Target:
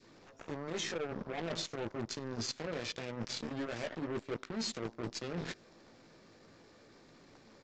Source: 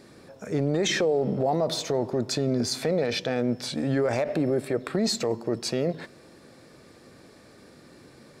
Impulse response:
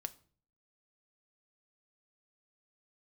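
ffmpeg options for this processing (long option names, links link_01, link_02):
-filter_complex "[0:a]areverse,acompressor=threshold=-34dB:ratio=16,areverse,asplit=2[link_01][link_02];[link_02]adelay=18,volume=-4.5dB[link_03];[link_01][link_03]amix=inputs=2:normalize=0,aeval=exprs='0.0596*(cos(1*acos(clip(val(0)/0.0596,-1,1)))-cos(1*PI/2))+0.0106*(cos(7*acos(clip(val(0)/0.0596,-1,1)))-cos(7*PI/2))+0.00133*(cos(8*acos(clip(val(0)/0.0596,-1,1)))-cos(8*PI/2))':channel_layout=same,adynamicequalizer=threshold=0.00251:dfrequency=780:dqfactor=0.95:tfrequency=780:tqfactor=0.95:attack=5:release=100:ratio=0.375:range=2.5:mode=cutabove:tftype=bell,aresample=16000,asoftclip=type=tanh:threshold=-36.5dB,aresample=44100,lowshelf=frequency=75:gain=-5.5,atempo=1.1,volume=5.5dB"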